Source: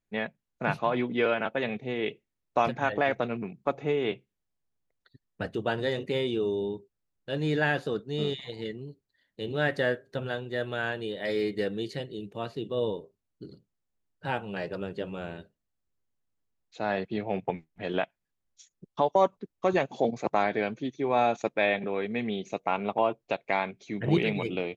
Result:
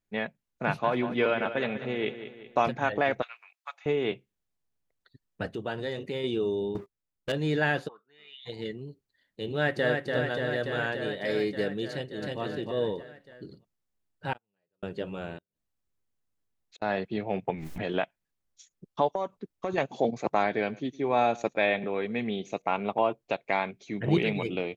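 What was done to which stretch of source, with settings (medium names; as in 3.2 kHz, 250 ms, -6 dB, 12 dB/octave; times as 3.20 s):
0.64–2.66 s: feedback delay 191 ms, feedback 47%, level -11.5 dB
3.22–3.86 s: Bessel high-pass 1.6 kHz, order 6
5.54–6.24 s: compression 1.5:1, threshold -36 dBFS
6.75–7.32 s: waveshaping leveller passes 3
7.87–8.45 s: band-pass filter 830 Hz -> 3.7 kHz, Q 9.1
9.47–10.05 s: echo throw 290 ms, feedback 80%, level -4 dB
11.91–12.40 s: echo throw 310 ms, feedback 25%, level -1 dB
14.33–14.83 s: gate -27 dBFS, range -48 dB
15.38–16.82 s: inverted gate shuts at -39 dBFS, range -38 dB
17.50–17.93 s: swell ahead of each attack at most 24 dB/s
19.13–19.78 s: compression, threshold -26 dBFS
20.46–22.62 s: delay 110 ms -22.5 dB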